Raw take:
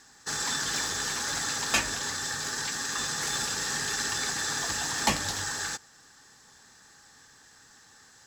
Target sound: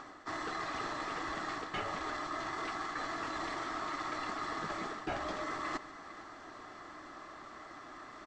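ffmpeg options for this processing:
-af "afftfilt=real='real(if(lt(b,1008),b+24*(1-2*mod(floor(b/24),2)),b),0)':imag='imag(if(lt(b,1008),b+24*(1-2*mod(floor(b/24),2)),b),0)':win_size=2048:overlap=0.75,lowpass=1.9k,areverse,acompressor=threshold=-46dB:ratio=8,areverse,aecho=1:1:145|455:0.112|0.133,acompressor=mode=upward:threshold=-56dB:ratio=2.5,volume=10dB"

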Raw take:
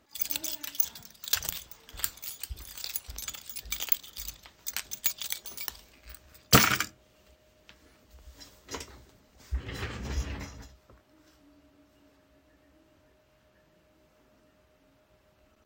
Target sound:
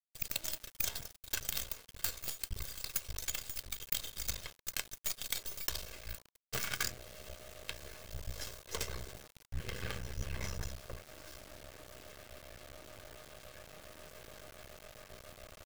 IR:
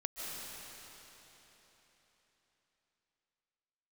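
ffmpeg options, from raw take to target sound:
-af "aecho=1:1:1.9:0.95,areverse,acompressor=threshold=-43dB:ratio=16,areverse,acrusher=bits=7:dc=4:mix=0:aa=0.000001,bandreject=f=1k:w=7.1,volume=10dB"

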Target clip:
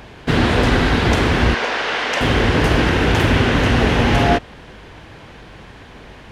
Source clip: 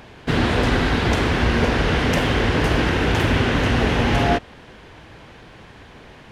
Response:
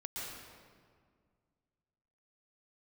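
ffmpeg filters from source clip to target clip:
-filter_complex "[0:a]asettb=1/sr,asplit=3[a][b][c];[a]atrim=end=1.544[d];[b]atrim=start=1.54:end=2.21,asetpts=PTS-STARTPTS,afade=t=in:d=0.004:c=qsin,afade=t=out:st=0.666:d=0.004:c=qsin,highpass=630,lowpass=7.2k[e];[c]atrim=start=2.206[f];[d][e]acrossfade=d=0.004:c1=hsin:c2=qsin[g];[g][f]acrossfade=d=0.004:c1=qsin:c2=hsin,aeval=exprs='val(0)+0.00282*(sin(2*PI*50*n/s)+sin(2*PI*2*50*n/s)/2+sin(2*PI*3*50*n/s)/3+sin(2*PI*4*50*n/s)/4+sin(2*PI*5*50*n/s)/5)':c=same,volume=3.5dB"

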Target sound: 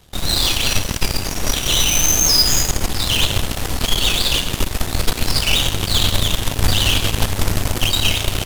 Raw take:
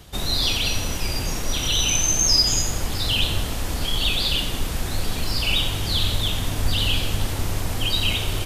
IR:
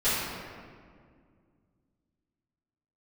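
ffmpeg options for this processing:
-filter_complex "[0:a]asplit=2[a][b];[1:a]atrim=start_sample=2205,asetrate=34398,aresample=44100[c];[b][c]afir=irnorm=-1:irlink=0,volume=-30.5dB[d];[a][d]amix=inputs=2:normalize=0,apsyclip=13.5dB,aeval=exprs='1.06*(cos(1*acos(clip(val(0)/1.06,-1,1)))-cos(1*PI/2))+0.266*(cos(3*acos(clip(val(0)/1.06,-1,1)))-cos(3*PI/2))+0.0944*(cos(8*acos(clip(val(0)/1.06,-1,1)))-cos(8*PI/2))':c=same,volume=-6.5dB"

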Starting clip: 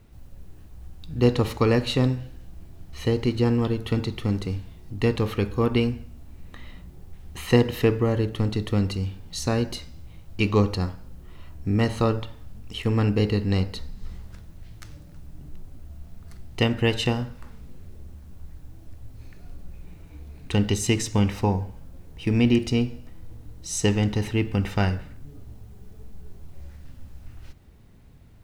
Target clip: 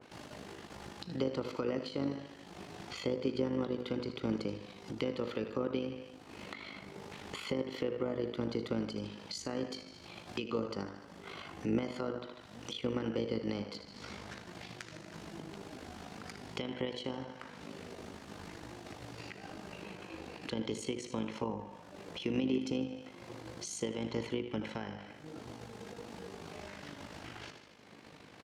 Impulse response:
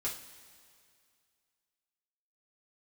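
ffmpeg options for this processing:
-filter_complex "[0:a]lowshelf=f=350:g=-10.5,agate=range=-33dB:threshold=-48dB:ratio=3:detection=peak,highpass=210,lowpass=5.3k,aecho=1:1:75|150|225|300:0.237|0.102|0.0438|0.0189,asetrate=48091,aresample=44100,atempo=0.917004,tremolo=f=51:d=0.621,acompressor=mode=upward:threshold=-42dB:ratio=2.5,alimiter=limit=-24dB:level=0:latency=1:release=341,acrossover=split=410[a][b];[b]acompressor=threshold=-50dB:ratio=3[c];[a][c]amix=inputs=2:normalize=0,adynamicequalizer=threshold=0.00126:dfrequency=2000:dqfactor=0.7:tfrequency=2000:tqfactor=0.7:attack=5:release=100:ratio=0.375:range=2:mode=cutabove:tftype=highshelf,volume=7dB"

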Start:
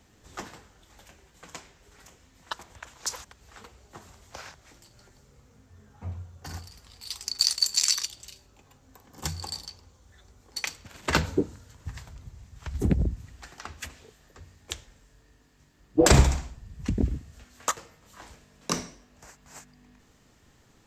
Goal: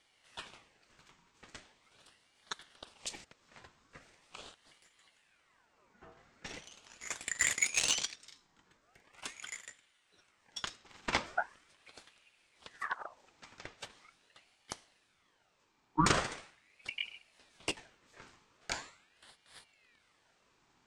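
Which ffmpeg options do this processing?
-filter_complex "[0:a]highpass=290,lowpass=6.1k,asettb=1/sr,asplit=3[a][b][c];[a]atrim=end=6.174[d];[b]atrim=start=6.17:end=8.16,asetpts=PTS-STARTPTS,afade=t=in:d=0.004:c=qsin,afade=t=out:st=1.986:d=0.004:c=qsin,asplit=2[e][f];[f]highpass=f=720:p=1,volume=13dB,asoftclip=type=tanh:threshold=-7dB[g];[e][g]amix=inputs=2:normalize=0,lowpass=f=4k:p=1,volume=-6dB[h];[c]atrim=start=8.156[i];[d][h]acrossfade=d=0.004:c1=hsin:c2=qsin[j];[j][i]acrossfade=d=0.004:c1=qsin:c2=hsin,aeval=exprs='val(0)*sin(2*PI*1600*n/s+1600*0.65/0.41*sin(2*PI*0.41*n/s))':c=same,volume=-4dB"

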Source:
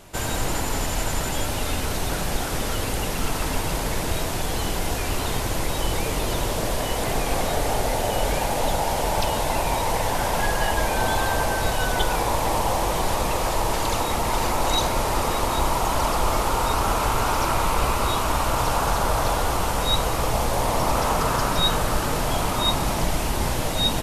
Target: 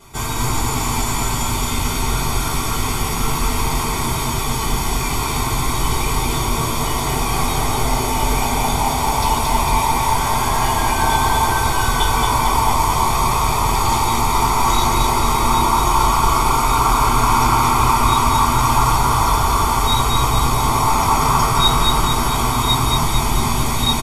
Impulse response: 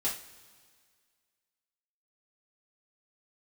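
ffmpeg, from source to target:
-filter_complex "[0:a]aecho=1:1:0.9:0.76,aecho=1:1:225|450|675|900|1125|1350|1575:0.668|0.341|0.174|0.0887|0.0452|0.0231|0.0118[a];[1:a]atrim=start_sample=2205,asetrate=61740,aresample=44100[b];[a][b]afir=irnorm=-1:irlink=0"

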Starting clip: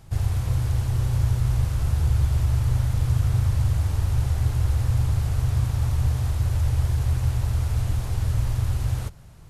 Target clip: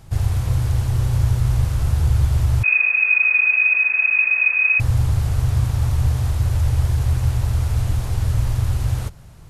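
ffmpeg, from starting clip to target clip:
-filter_complex "[0:a]asettb=1/sr,asplit=3[a][b][c];[a]atrim=end=2.634[d];[b]atrim=start=2.63:end=4.8,asetpts=PTS-STARTPTS,afade=t=in:d=0.004:c=qsin,afade=t=out:st=2.166:d=0.004:c=qsin,lowpass=f=2.2k:t=q:w=0.5098,lowpass=f=2.2k:t=q:w=0.6013,lowpass=f=2.2k:t=q:w=0.9,lowpass=f=2.2k:t=q:w=2.563,afreqshift=-2600[e];[c]atrim=start=4.796[f];[d][e]acrossfade=d=0.004:c1=hsin:c2=qsin[g];[g][f]acrossfade=d=0.004:c1=qsin:c2=hsin,volume=4dB"

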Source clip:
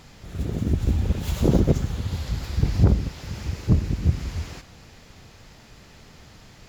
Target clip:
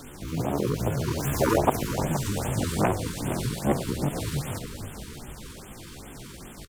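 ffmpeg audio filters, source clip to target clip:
-filter_complex "[0:a]bandreject=f=50:t=h:w=6,bandreject=f=100:t=h:w=6,acrossover=split=280|3700[a][b][c];[a]acompressor=threshold=-31dB:ratio=10[d];[d][b][c]amix=inputs=3:normalize=0,asetrate=78577,aresample=44100,atempo=0.561231,asplit=7[e][f][g][h][i][j][k];[f]adelay=469,afreqshift=-45,volume=-10.5dB[l];[g]adelay=938,afreqshift=-90,volume=-16dB[m];[h]adelay=1407,afreqshift=-135,volume=-21.5dB[n];[i]adelay=1876,afreqshift=-180,volume=-27dB[o];[j]adelay=2345,afreqshift=-225,volume=-32.6dB[p];[k]adelay=2814,afreqshift=-270,volume=-38.1dB[q];[e][l][m][n][o][p][q]amix=inputs=7:normalize=0,afftfilt=real='re*(1-between(b*sr/1024,620*pow(5200/620,0.5+0.5*sin(2*PI*2.5*pts/sr))/1.41,620*pow(5200/620,0.5+0.5*sin(2*PI*2.5*pts/sr))*1.41))':imag='im*(1-between(b*sr/1024,620*pow(5200/620,0.5+0.5*sin(2*PI*2.5*pts/sr))/1.41,620*pow(5200/620,0.5+0.5*sin(2*PI*2.5*pts/sr))*1.41))':win_size=1024:overlap=0.75,volume=5.5dB"

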